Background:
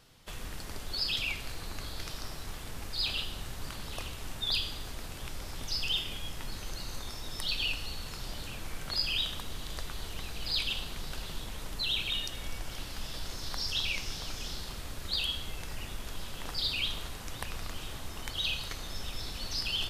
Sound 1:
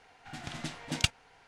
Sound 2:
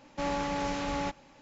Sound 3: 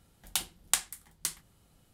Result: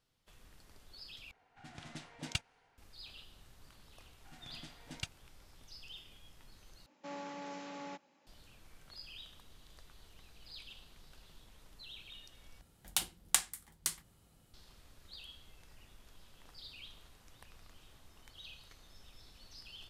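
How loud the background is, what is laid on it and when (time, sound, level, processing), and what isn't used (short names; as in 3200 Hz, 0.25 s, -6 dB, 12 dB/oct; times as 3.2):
background -19.5 dB
1.31 replace with 1 -9.5 dB + mismatched tape noise reduction decoder only
3.99 add 1 -14.5 dB
6.86 replace with 2 -13 dB + HPF 180 Hz 24 dB/oct
12.61 replace with 3 -2 dB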